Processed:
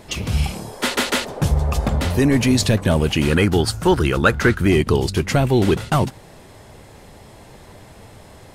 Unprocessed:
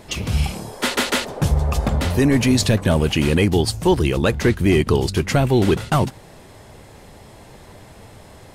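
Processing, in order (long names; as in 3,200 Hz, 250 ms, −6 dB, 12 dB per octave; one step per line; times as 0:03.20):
0:03.30–0:04.68: parametric band 1,400 Hz +13.5 dB 0.46 octaves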